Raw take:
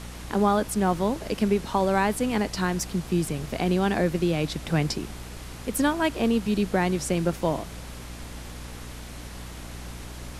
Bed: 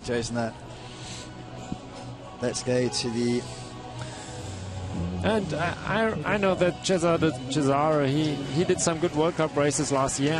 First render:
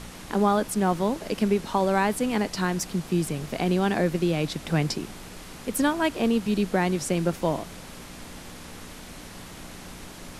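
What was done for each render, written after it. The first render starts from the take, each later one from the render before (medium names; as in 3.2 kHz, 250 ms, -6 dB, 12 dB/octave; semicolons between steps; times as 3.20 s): de-hum 60 Hz, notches 2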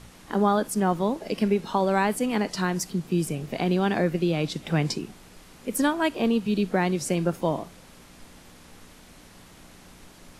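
noise print and reduce 8 dB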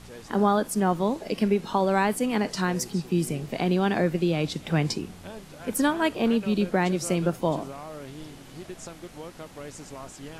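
add bed -17 dB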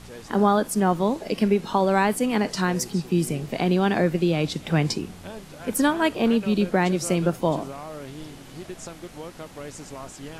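trim +2.5 dB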